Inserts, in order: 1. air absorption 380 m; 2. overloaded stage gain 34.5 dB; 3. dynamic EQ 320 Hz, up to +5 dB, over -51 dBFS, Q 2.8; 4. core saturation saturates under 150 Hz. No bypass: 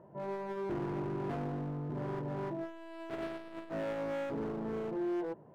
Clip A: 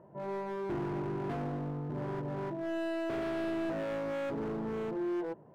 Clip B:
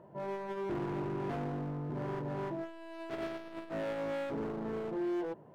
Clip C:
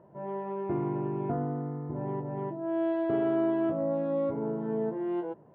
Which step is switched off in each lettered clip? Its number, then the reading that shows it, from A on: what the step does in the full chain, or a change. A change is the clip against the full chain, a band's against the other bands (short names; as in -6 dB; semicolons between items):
4, crest factor change -2.0 dB; 1, 4 kHz band +2.0 dB; 2, distortion -7 dB